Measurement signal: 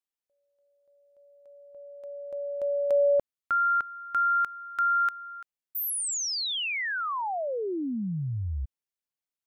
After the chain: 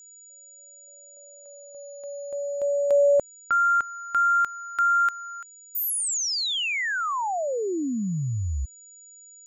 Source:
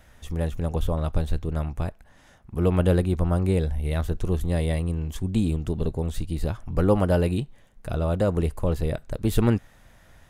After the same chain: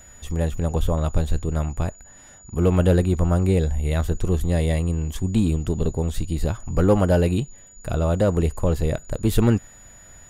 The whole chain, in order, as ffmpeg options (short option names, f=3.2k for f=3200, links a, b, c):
-filter_complex "[0:a]aeval=exprs='val(0)+0.00316*sin(2*PI*6900*n/s)':c=same,asplit=2[a][b];[b]asoftclip=type=hard:threshold=-16.5dB,volume=-6dB[c];[a][c]amix=inputs=2:normalize=0"